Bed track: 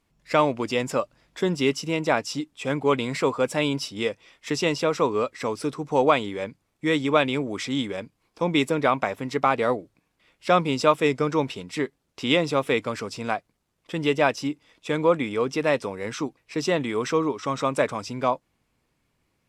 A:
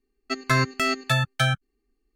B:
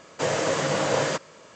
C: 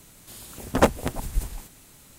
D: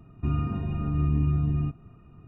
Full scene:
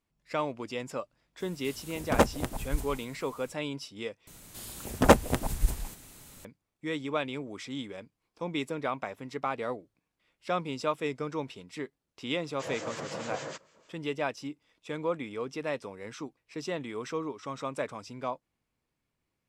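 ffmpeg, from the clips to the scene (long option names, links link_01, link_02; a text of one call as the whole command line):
ffmpeg -i bed.wav -i cue0.wav -i cue1.wav -i cue2.wav -filter_complex "[3:a]asplit=2[link_01][link_02];[0:a]volume=-11dB[link_03];[2:a]acrossover=split=1500[link_04][link_05];[link_04]aeval=exprs='val(0)*(1-0.7/2+0.7/2*cos(2*PI*6.5*n/s))':channel_layout=same[link_06];[link_05]aeval=exprs='val(0)*(1-0.7/2-0.7/2*cos(2*PI*6.5*n/s))':channel_layout=same[link_07];[link_06][link_07]amix=inputs=2:normalize=0[link_08];[link_03]asplit=2[link_09][link_10];[link_09]atrim=end=4.274[link_11];[link_02]atrim=end=2.18[link_12];[link_10]atrim=start=6.446[link_13];[link_01]atrim=end=2.18,asetpts=PTS-STARTPTS,volume=-4.5dB,afade=type=in:duration=0.05,afade=type=out:start_time=2.13:duration=0.05,adelay=1370[link_14];[link_08]atrim=end=1.55,asetpts=PTS-STARTPTS,volume=-10.5dB,afade=type=in:duration=0.004:curve=hsin,afade=type=out:start_time=1.546:duration=0.004:curve=hsin,adelay=12400[link_15];[link_11][link_12]acrossfade=duration=0.004:curve1=hsin:curve2=hsin[link_16];[link_16][link_13]acrossfade=duration=0.004:curve1=hsin:curve2=hsin[link_17];[link_17][link_14][link_15]amix=inputs=3:normalize=0" out.wav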